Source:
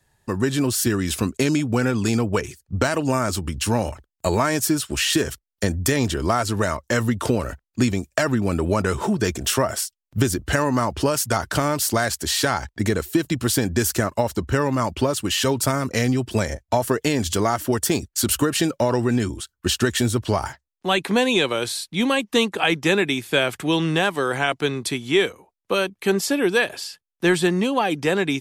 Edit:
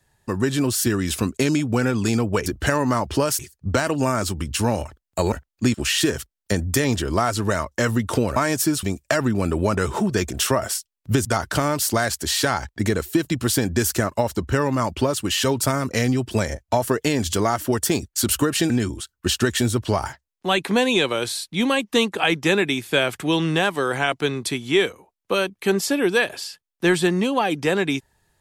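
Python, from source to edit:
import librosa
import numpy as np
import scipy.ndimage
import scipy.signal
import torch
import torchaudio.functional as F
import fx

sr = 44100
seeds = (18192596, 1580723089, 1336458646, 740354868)

y = fx.edit(x, sr, fx.swap(start_s=4.39, length_s=0.47, other_s=7.48, other_length_s=0.42),
    fx.move(start_s=10.32, length_s=0.93, to_s=2.46),
    fx.cut(start_s=18.7, length_s=0.4), tone=tone)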